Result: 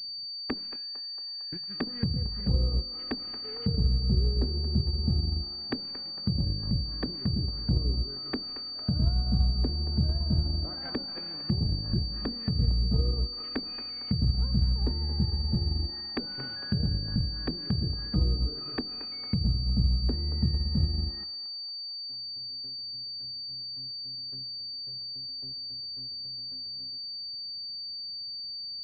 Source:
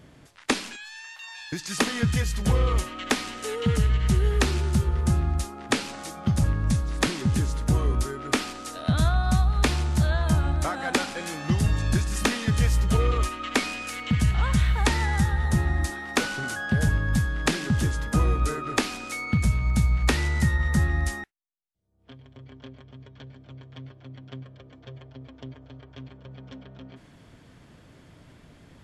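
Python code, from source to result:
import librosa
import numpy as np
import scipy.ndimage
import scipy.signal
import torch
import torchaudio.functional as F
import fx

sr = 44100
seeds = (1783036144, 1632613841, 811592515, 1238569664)

p1 = x + fx.echo_banded(x, sr, ms=227, feedback_pct=80, hz=900.0, wet_db=-8, dry=0)
p2 = fx.env_lowpass(p1, sr, base_hz=1200.0, full_db=-18.5)
p3 = fx.air_absorb(p2, sr, metres=160.0)
p4 = fx.hum_notches(p3, sr, base_hz=50, count=3)
p5 = fx.power_curve(p4, sr, exponent=1.4)
p6 = fx.env_lowpass_down(p5, sr, base_hz=580.0, full_db=-24.5)
p7 = fx.peak_eq(p6, sr, hz=880.0, db=-10.0, octaves=2.3)
y = fx.pwm(p7, sr, carrier_hz=4600.0)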